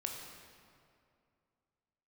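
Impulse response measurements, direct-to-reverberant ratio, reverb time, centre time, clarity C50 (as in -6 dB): 1.0 dB, 2.4 s, 71 ms, 3.0 dB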